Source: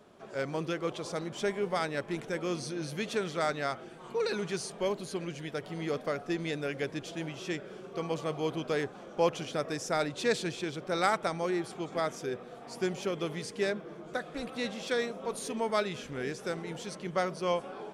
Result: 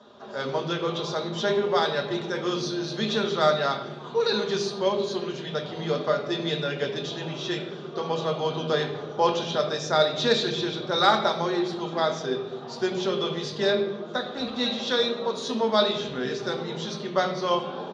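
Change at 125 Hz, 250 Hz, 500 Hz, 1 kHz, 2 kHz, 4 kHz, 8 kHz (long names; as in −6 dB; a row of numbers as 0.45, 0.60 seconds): +5.5, +5.5, +7.0, +8.0, +5.0, +13.0, +2.0 decibels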